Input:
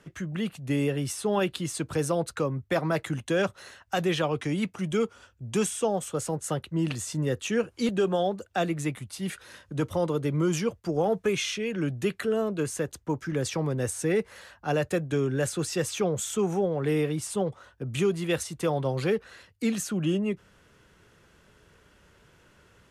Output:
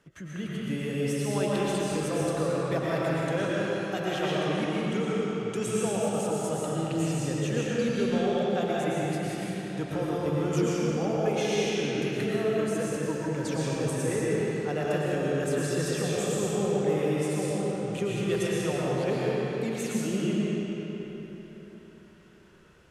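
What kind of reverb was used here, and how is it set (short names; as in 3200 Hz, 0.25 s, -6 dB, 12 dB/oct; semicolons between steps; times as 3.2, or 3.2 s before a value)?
digital reverb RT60 4 s, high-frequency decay 0.75×, pre-delay 75 ms, DRR -7 dB; gain -7.5 dB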